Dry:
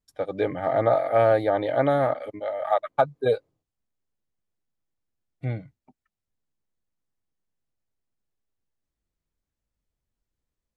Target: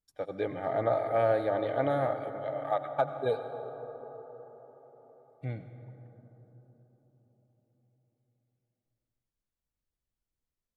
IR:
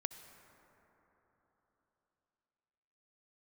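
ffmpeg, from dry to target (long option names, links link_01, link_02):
-filter_complex "[1:a]atrim=start_sample=2205,asetrate=33957,aresample=44100[link_01];[0:a][link_01]afir=irnorm=-1:irlink=0,volume=-7dB"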